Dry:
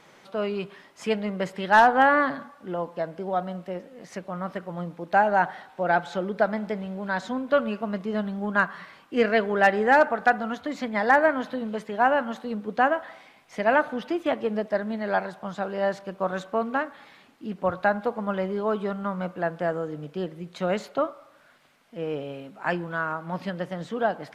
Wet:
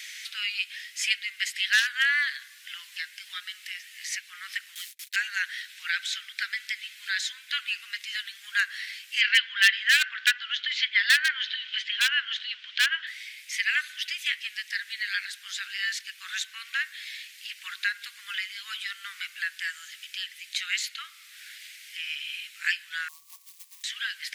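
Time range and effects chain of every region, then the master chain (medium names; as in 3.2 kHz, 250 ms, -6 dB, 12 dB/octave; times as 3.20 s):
4.75–5.16 s: gate -43 dBFS, range -20 dB + differentiator + waveshaping leveller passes 3
9.21–13.07 s: cabinet simulation 440–4900 Hz, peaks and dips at 570 Hz -6 dB, 1 kHz +10 dB, 1.5 kHz +5 dB, 3.1 kHz +10 dB + hard clipper -10.5 dBFS
23.08–23.84 s: brick-wall FIR band-pass 220–1200 Hz + companded quantiser 8-bit
whole clip: steep high-pass 1.8 kHz 48 dB/octave; treble shelf 2.4 kHz +10 dB; three bands compressed up and down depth 40%; trim +6 dB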